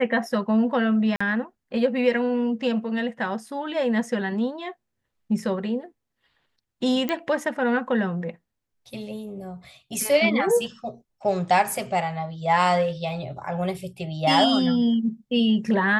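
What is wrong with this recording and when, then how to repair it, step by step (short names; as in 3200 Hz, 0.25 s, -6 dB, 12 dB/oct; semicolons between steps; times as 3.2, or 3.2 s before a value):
1.16–1.21 gap 45 ms
7.09 pop -12 dBFS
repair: de-click; interpolate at 1.16, 45 ms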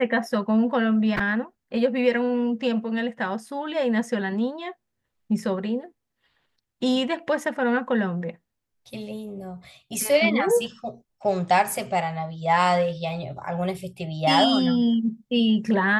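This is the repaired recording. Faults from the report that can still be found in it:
none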